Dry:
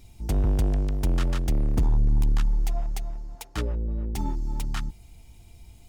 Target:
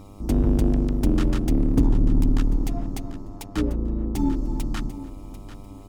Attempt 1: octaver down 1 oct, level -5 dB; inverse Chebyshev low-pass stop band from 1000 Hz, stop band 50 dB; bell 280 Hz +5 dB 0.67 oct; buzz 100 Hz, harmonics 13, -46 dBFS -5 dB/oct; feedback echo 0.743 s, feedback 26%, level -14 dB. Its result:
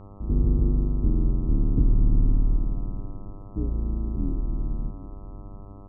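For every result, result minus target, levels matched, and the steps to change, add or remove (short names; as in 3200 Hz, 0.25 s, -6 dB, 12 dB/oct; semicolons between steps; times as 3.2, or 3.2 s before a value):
1000 Hz band -7.5 dB; 250 Hz band -4.5 dB
remove: inverse Chebyshev low-pass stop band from 1000 Hz, stop band 50 dB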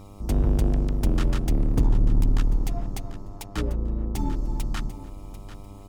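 250 Hz band -4.5 dB
change: bell 280 Hz +15 dB 0.67 oct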